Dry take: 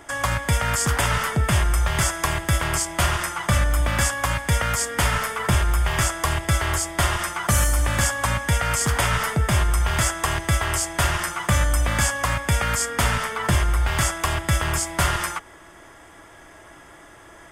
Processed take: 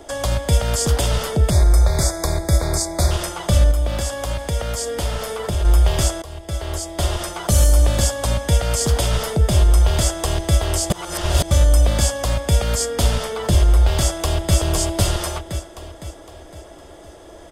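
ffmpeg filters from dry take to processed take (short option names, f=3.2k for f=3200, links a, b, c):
-filter_complex "[0:a]asettb=1/sr,asplit=3[a][b][c];[a]atrim=end=1.504[d];[b]atrim=start=1.5:end=3.11,asetpts=PTS-STARTPTS,afade=t=in:d=0.004:c=qsin,afade=t=out:st=1.606:d=0.004:c=qsin,asuperstop=centerf=2900:order=12:qfactor=2.5[e];[c]atrim=start=3.106[f];[d][e]acrossfade=d=0.004:c1=hsin:c2=qsin[g];[g][f]acrossfade=d=0.004:c1=qsin:c2=hsin,asettb=1/sr,asplit=3[h][i][j];[h]atrim=end=3.714[k];[i]atrim=start=3.71:end=5.65,asetpts=PTS-STARTPTS,afade=t=in:d=0.004:c=qsin,afade=t=out:st=1.936:d=0.004:c=qsin,acompressor=threshold=-24dB:ratio=3:attack=3.2:release=140:knee=1:detection=peak[l];[j]atrim=start=5.646[m];[k][l]acrossfade=d=0.004:c1=hsin:c2=qsin[n];[n][m]acrossfade=d=0.004:c1=qsin:c2=hsin,asplit=2[o][p];[p]afade=t=in:st=13.98:d=0.01,afade=t=out:st=14.57:d=0.01,aecho=0:1:510|1020|1530|2040|2550|3060:0.707946|0.318576|0.143359|0.0645116|0.0290302|0.0130636[q];[o][q]amix=inputs=2:normalize=0,asplit=4[r][s][t][u];[r]atrim=end=6.22,asetpts=PTS-STARTPTS,afade=t=out:st=6.216:d=0.004:c=hsin:silence=0.1[v];[s]atrim=start=6.22:end=10.902,asetpts=PTS-STARTPTS,afade=t=in:d=1.26:silence=0.1[w];[t]atrim=start=10.898:end=11.512,asetpts=PTS-STARTPTS,areverse[x];[u]atrim=start=11.508[y];[v][w]concat=n=2:v=0:a=1[z];[z][x]acrossfade=d=0.004:c1=hsin:c2=hsin[aa];[aa][y]acrossfade=d=0.004:c1=hsin:c2=hsin,lowshelf=f=790:t=q:w=1.5:g=9,acrossover=split=310|3000[ab][ac][ad];[ac]acompressor=threshold=-22dB:ratio=6[ae];[ab][ae][ad]amix=inputs=3:normalize=0,equalizer=f=125:t=o:w=1:g=-8,equalizer=f=250:t=o:w=1:g=-4,equalizer=f=2k:t=o:w=1:g=-7,equalizer=f=4k:t=o:w=1:g=8"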